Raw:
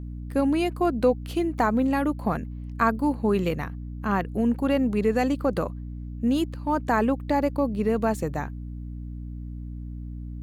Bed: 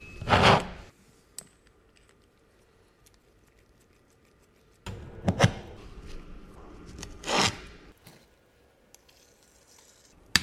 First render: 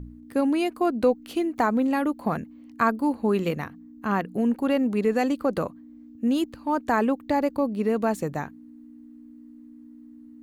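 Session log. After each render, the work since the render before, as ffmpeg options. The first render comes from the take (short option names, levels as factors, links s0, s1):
-af "bandreject=f=60:t=h:w=4,bandreject=f=120:t=h:w=4,bandreject=f=180:t=h:w=4"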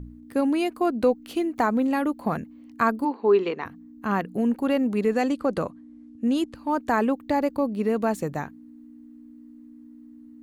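-filter_complex "[0:a]asplit=3[s0][s1][s2];[s0]afade=t=out:st=3.04:d=0.02[s3];[s1]highpass=350,equalizer=f=400:t=q:w=4:g=10,equalizer=f=570:t=q:w=4:g=-6,equalizer=f=990:t=q:w=4:g=6,lowpass=f=4800:w=0.5412,lowpass=f=4800:w=1.3066,afade=t=in:st=3.04:d=0.02,afade=t=out:st=3.64:d=0.02[s4];[s2]afade=t=in:st=3.64:d=0.02[s5];[s3][s4][s5]amix=inputs=3:normalize=0,asettb=1/sr,asplit=3[s6][s7][s8];[s6]atrim=end=5.144[s9];[s7]atrim=start=5.14:end=6.55,asetpts=PTS-STARTPTS,afade=t=in:d=0.004:c=qsin,afade=t=out:st=1.406:d=0.004:c=qsin,lowpass=f=11000:w=0.5412,lowpass=f=11000:w=1.3066[s10];[s8]atrim=start=6.546[s11];[s9][s10]acrossfade=d=0.004:c1=hsin:c2=qsin[s12];[s12][s11]acrossfade=d=0.004:c1=qsin:c2=hsin"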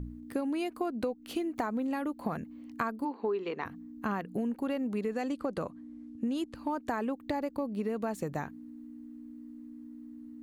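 -af "acompressor=threshold=0.0316:ratio=6"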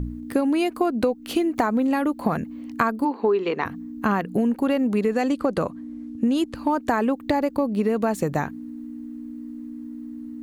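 -af "volume=3.55"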